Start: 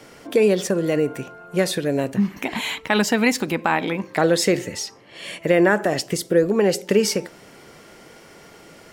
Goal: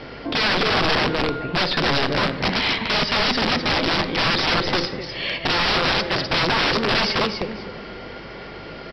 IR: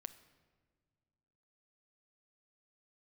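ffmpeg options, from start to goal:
-filter_complex "[0:a]asplit=2[a][b];[b]acompressor=threshold=-30dB:ratio=10,volume=2dB[c];[a][c]amix=inputs=2:normalize=0,aecho=1:1:254|508|762:0.422|0.0928|0.0204,aresample=11025,aeval=exprs='(mod(6.68*val(0)+1,2)-1)/6.68':c=same,aresample=44100,acontrast=53,aeval=exprs='val(0)+0.00794*(sin(2*PI*50*n/s)+sin(2*PI*2*50*n/s)/2+sin(2*PI*3*50*n/s)/3+sin(2*PI*4*50*n/s)/4+sin(2*PI*5*50*n/s)/5)':c=same[d];[1:a]atrim=start_sample=2205,asetrate=36603,aresample=44100[e];[d][e]afir=irnorm=-1:irlink=0"

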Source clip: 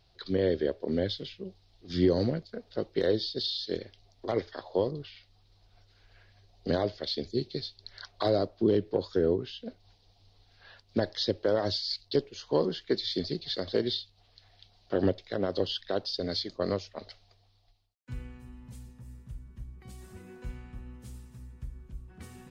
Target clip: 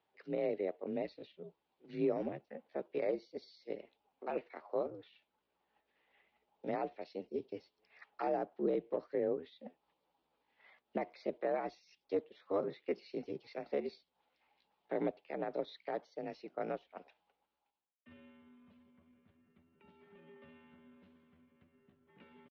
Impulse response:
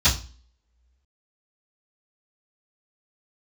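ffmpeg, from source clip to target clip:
-af "highpass=f=220:t=q:w=0.5412,highpass=f=220:t=q:w=1.307,lowpass=f=2.6k:t=q:w=0.5176,lowpass=f=2.6k:t=q:w=0.7071,lowpass=f=2.6k:t=q:w=1.932,afreqshift=-54,asetrate=55563,aresample=44100,atempo=0.793701,volume=-8dB"

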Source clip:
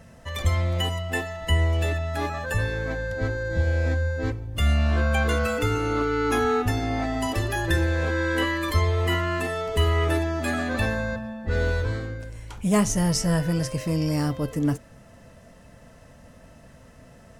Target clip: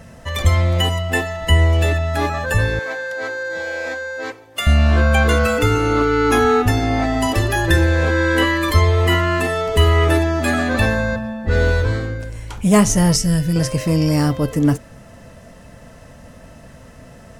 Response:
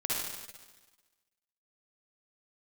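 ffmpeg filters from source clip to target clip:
-filter_complex "[0:a]asettb=1/sr,asplit=3[a][b][c];[a]atrim=end=2.794[d];[b]atrim=start=2.79:end=4.67,asetpts=PTS-STARTPTS,afade=t=in:d=0.004:c=qsin,afade=t=out:st=1.876:d=0.004:c=qsin,highpass=600[e];[c]atrim=start=4.666[f];[d][e]acrossfade=d=0.004:c1=hsin:c2=qsin[g];[g][f]acrossfade=d=0.004:c1=qsin:c2=hsin,asettb=1/sr,asplit=3[h][i][j];[h]atrim=end=13.164[k];[i]atrim=start=13.16:end=13.56,asetpts=PTS-STARTPTS,afade=t=in:d=0.004:c=qsin,afade=t=out:st=0.396:d=0.004:c=qsin,equalizer=f=890:w=0.61:g=-15[l];[j]atrim=start=13.556[m];[k][l]acrossfade=d=0.004:c1=hsin:c2=qsin[n];[n][m]acrossfade=d=0.004:c1=qsin:c2=hsin,volume=8dB"

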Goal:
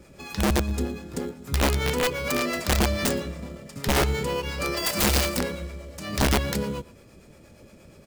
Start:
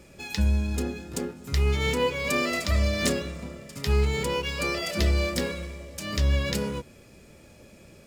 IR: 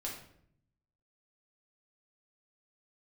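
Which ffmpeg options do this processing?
-filter_complex "[0:a]asplit=3[a][b][c];[a]afade=t=out:st=4.76:d=0.02[d];[b]aemphasis=mode=production:type=75kf,afade=t=in:st=4.76:d=0.02,afade=t=out:st=5.35:d=0.02[e];[c]afade=t=in:st=5.35:d=0.02[f];[d][e][f]amix=inputs=3:normalize=0,acrossover=split=500[g][h];[g]aeval=exprs='val(0)*(1-0.5/2+0.5/2*cos(2*PI*8.5*n/s))':c=same[i];[h]aeval=exprs='val(0)*(1-0.5/2-0.5/2*cos(2*PI*8.5*n/s))':c=same[j];[i][j]amix=inputs=2:normalize=0,asplit=2[k][l];[l]acrusher=samples=12:mix=1:aa=0.000001,volume=-6.5dB[m];[k][m]amix=inputs=2:normalize=0,aeval=exprs='(mod(6.31*val(0)+1,2)-1)/6.31':c=same,asplit=2[n][o];[o]adelay=116.6,volume=-21dB,highshelf=f=4k:g=-2.62[p];[n][p]amix=inputs=2:normalize=0"

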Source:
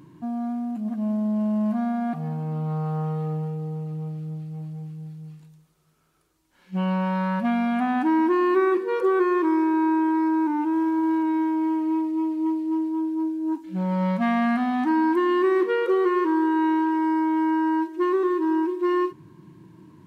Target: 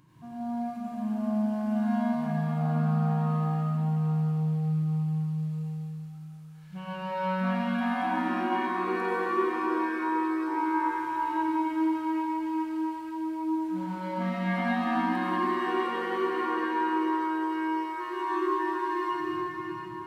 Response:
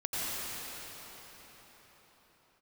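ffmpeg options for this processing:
-filter_complex "[0:a]equalizer=f=340:t=o:w=1.8:g=-12,alimiter=level_in=1.5dB:limit=-24dB:level=0:latency=1,volume=-1.5dB[a];[1:a]atrim=start_sample=2205[b];[a][b]afir=irnorm=-1:irlink=0,volume=-3.5dB"

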